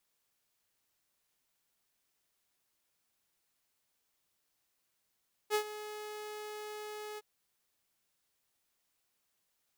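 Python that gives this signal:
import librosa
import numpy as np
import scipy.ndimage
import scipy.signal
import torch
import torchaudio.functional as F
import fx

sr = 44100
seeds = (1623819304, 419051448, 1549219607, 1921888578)

y = fx.adsr_tone(sr, wave='saw', hz=423.0, attack_ms=46.0, decay_ms=85.0, sustain_db=-15.0, held_s=1.68, release_ms=32.0, level_db=-24.0)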